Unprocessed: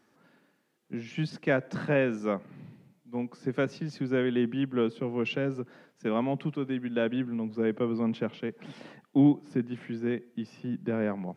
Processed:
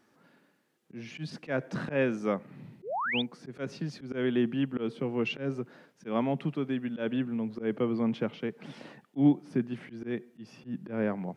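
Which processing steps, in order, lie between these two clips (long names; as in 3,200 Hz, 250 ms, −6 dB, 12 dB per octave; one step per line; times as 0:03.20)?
sound drawn into the spectrogram rise, 0:02.82–0:03.22, 330–3,800 Hz −31 dBFS
volume swells 121 ms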